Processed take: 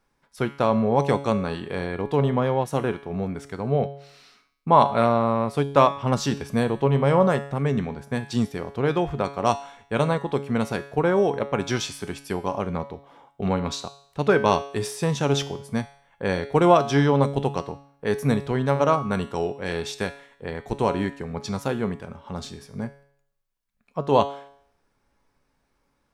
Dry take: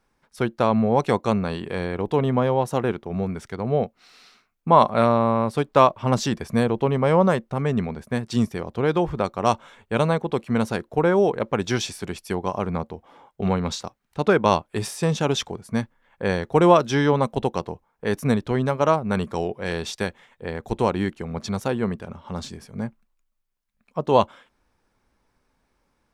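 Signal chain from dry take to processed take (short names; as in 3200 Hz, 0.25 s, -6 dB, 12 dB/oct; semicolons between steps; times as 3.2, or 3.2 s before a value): resonator 140 Hz, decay 0.64 s, harmonics all, mix 70%; gain +7.5 dB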